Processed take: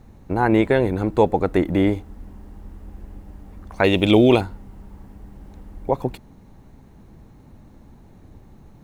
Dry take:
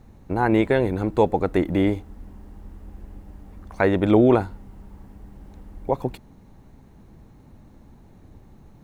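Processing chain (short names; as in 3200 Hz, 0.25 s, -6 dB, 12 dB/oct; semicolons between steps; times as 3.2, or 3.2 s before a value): 3.84–4.41 resonant high shelf 2100 Hz +9 dB, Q 3; gain +2 dB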